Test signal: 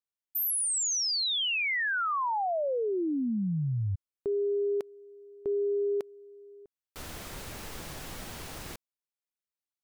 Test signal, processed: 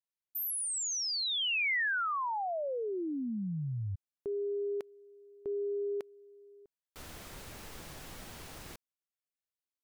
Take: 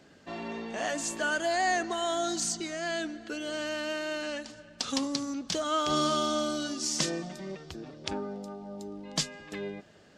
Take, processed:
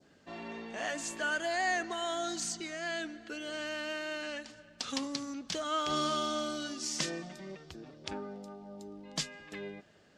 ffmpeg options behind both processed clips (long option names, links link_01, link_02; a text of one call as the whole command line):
ffmpeg -i in.wav -af "adynamicequalizer=threshold=0.00562:dfrequency=2100:dqfactor=0.9:tfrequency=2100:tqfactor=0.9:attack=5:release=100:ratio=0.375:range=2.5:mode=boostabove:tftype=bell,volume=-6dB" out.wav